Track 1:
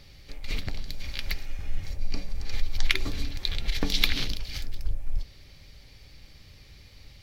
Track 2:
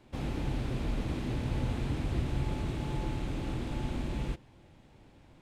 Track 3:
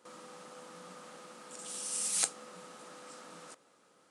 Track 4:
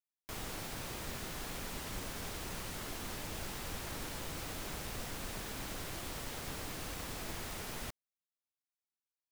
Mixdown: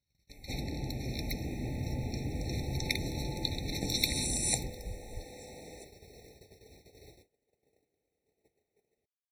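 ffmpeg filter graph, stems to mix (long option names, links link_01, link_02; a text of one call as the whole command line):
ffmpeg -i stem1.wav -i stem2.wav -i stem3.wav -i stem4.wav -filter_complex "[0:a]bass=frequency=250:gain=5,treble=frequency=4000:gain=13,volume=-9dB[link_01];[1:a]adelay=350,volume=-3dB[link_02];[2:a]adelay=2300,volume=2.5dB[link_03];[3:a]equalizer=frequency=430:width=2.2:gain=15,adelay=1150,volume=-15dB[link_04];[link_01][link_02][link_03][link_04]amix=inputs=4:normalize=0,agate=range=-29dB:threshold=-49dB:ratio=16:detection=peak,highpass=59,afftfilt=real='re*eq(mod(floor(b*sr/1024/890),2),0)':imag='im*eq(mod(floor(b*sr/1024/890),2),0)':win_size=1024:overlap=0.75" out.wav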